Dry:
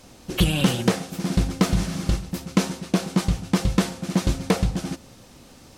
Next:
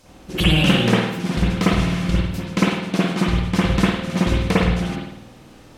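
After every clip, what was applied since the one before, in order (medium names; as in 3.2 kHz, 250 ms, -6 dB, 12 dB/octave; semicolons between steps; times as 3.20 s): dynamic bell 2.5 kHz, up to +6 dB, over -43 dBFS, Q 0.74; reverberation RT60 0.80 s, pre-delay 51 ms, DRR -7 dB; trim -4 dB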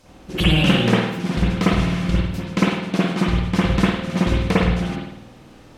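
treble shelf 5.6 kHz -5 dB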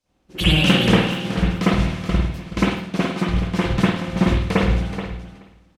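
on a send: feedback delay 427 ms, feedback 22%, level -7 dB; on the sum: three bands expanded up and down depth 70%; trim -1.5 dB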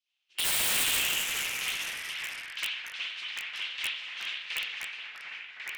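ladder band-pass 3.3 kHz, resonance 55%; integer overflow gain 26.5 dB; ever faster or slower copies 244 ms, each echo -3 st, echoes 3, each echo -6 dB; trim +4 dB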